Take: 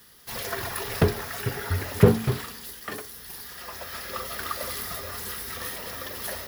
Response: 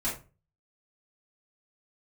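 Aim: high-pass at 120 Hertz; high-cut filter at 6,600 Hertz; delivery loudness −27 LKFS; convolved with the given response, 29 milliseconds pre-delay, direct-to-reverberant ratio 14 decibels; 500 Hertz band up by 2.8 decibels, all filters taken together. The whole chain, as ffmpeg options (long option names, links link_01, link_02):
-filter_complex "[0:a]highpass=120,lowpass=6600,equalizer=frequency=500:width_type=o:gain=3.5,asplit=2[link_01][link_02];[1:a]atrim=start_sample=2205,adelay=29[link_03];[link_02][link_03]afir=irnorm=-1:irlink=0,volume=-20.5dB[link_04];[link_01][link_04]amix=inputs=2:normalize=0,volume=1dB"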